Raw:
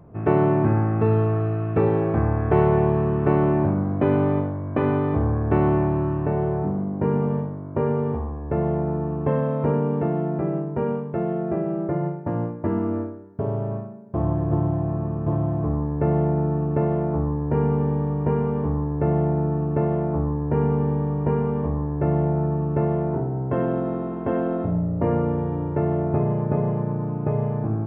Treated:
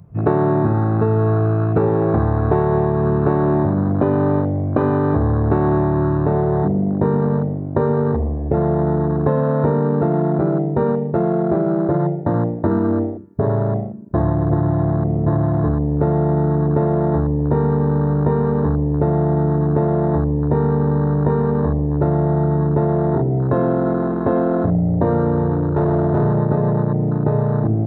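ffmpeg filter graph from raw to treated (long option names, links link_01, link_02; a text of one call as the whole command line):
ffmpeg -i in.wav -filter_complex "[0:a]asettb=1/sr,asplit=3[link_01][link_02][link_03];[link_01]atrim=end=25.554[link_04];[link_02]atrim=start=25.55:end=26.37,asetpts=PTS-STARTPTS,afade=type=in:duration=0.004:curve=qsin,afade=type=out:start_time=0.816:duration=0.004:curve=qsin,asoftclip=type=hard:threshold=-20.5dB,lowpass=frequency=1600:poles=1[link_05];[link_03]atrim=start=26.366[link_06];[link_04][link_05]acrossfade=duration=0.004:curve1=hsin:curve2=qsin[link_07];[link_07][link_06]acrossfade=duration=0.004:curve1=qsin:curve2=hsin,afwtdn=0.0316,highshelf=frequency=2600:gain=11.5,acompressor=threshold=-22dB:ratio=6,volume=9dB" out.wav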